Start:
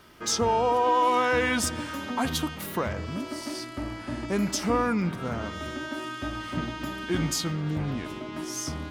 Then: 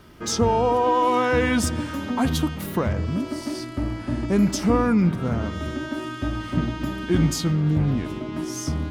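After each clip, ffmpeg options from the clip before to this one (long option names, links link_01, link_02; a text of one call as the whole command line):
ffmpeg -i in.wav -af "lowshelf=frequency=390:gain=10.5" out.wav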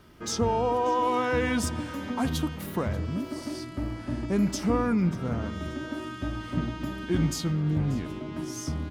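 ffmpeg -i in.wav -af "aecho=1:1:585|1170|1755:0.1|0.038|0.0144,volume=-5.5dB" out.wav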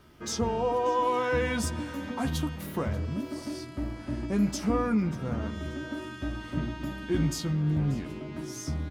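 ffmpeg -i in.wav -filter_complex "[0:a]asplit=2[link_01][link_02];[link_02]adelay=14,volume=-7.5dB[link_03];[link_01][link_03]amix=inputs=2:normalize=0,volume=-2.5dB" out.wav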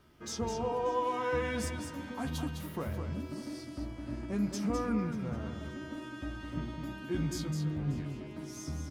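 ffmpeg -i in.wav -af "aecho=1:1:207:0.473,volume=-6.5dB" out.wav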